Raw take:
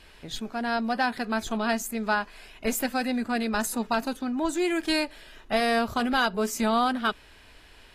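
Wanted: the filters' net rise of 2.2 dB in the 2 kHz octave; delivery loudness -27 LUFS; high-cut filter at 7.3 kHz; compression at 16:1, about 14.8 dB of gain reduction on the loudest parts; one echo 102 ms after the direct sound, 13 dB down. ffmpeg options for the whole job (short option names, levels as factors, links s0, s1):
-af "lowpass=7300,equalizer=f=2000:t=o:g=3,acompressor=threshold=0.02:ratio=16,aecho=1:1:102:0.224,volume=3.76"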